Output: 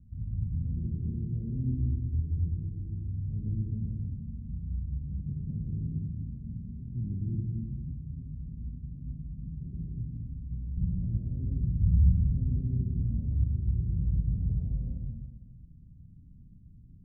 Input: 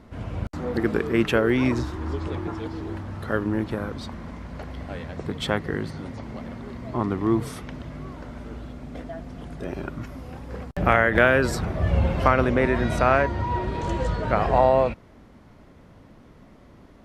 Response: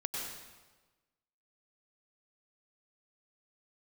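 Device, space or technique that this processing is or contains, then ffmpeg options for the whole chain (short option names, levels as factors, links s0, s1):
club heard from the street: -filter_complex "[0:a]alimiter=limit=0.2:level=0:latency=1:release=31,lowpass=f=160:w=0.5412,lowpass=f=160:w=1.3066[s0];[1:a]atrim=start_sample=2205[s1];[s0][s1]afir=irnorm=-1:irlink=0"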